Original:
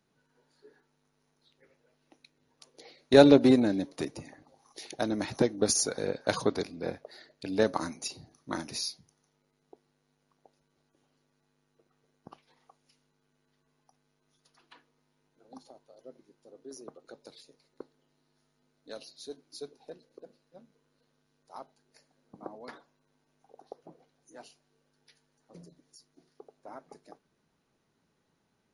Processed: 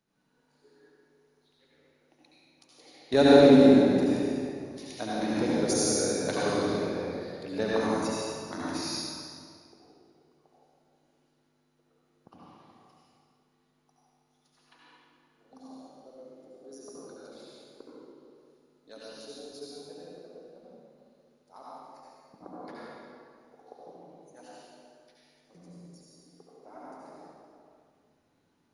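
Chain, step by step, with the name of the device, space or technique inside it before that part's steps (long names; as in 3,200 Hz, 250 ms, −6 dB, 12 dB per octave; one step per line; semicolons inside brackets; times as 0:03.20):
tunnel (flutter between parallel walls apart 11.8 metres, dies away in 0.57 s; convolution reverb RT60 2.2 s, pre-delay 74 ms, DRR −6.5 dB)
level −6 dB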